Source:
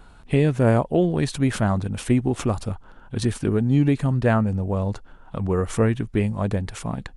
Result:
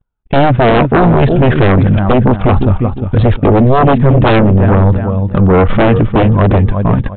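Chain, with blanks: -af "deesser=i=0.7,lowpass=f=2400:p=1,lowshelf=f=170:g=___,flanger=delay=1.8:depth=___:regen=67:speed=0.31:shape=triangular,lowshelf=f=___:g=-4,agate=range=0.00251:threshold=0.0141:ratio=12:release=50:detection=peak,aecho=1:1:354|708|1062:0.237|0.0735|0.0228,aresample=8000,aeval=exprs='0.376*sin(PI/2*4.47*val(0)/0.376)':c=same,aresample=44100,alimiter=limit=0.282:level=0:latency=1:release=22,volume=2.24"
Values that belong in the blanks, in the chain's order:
7.5, 4.8, 63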